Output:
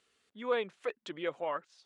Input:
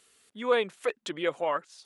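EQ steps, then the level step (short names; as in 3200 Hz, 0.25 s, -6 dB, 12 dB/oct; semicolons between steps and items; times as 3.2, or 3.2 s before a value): air absorption 91 m; -6.0 dB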